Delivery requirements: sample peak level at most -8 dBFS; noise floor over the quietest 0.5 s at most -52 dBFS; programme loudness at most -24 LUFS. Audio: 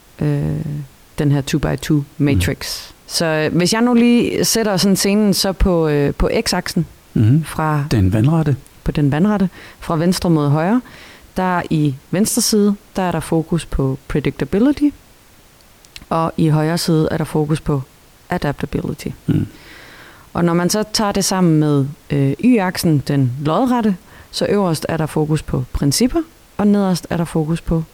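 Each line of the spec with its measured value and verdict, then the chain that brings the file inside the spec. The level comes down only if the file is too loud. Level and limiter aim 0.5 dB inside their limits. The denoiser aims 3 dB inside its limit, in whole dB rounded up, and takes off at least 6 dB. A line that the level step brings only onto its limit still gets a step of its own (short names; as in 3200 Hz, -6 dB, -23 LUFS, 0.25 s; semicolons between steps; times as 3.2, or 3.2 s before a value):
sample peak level -5.5 dBFS: fail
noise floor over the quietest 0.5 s -47 dBFS: fail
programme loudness -17.0 LUFS: fail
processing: gain -7.5 dB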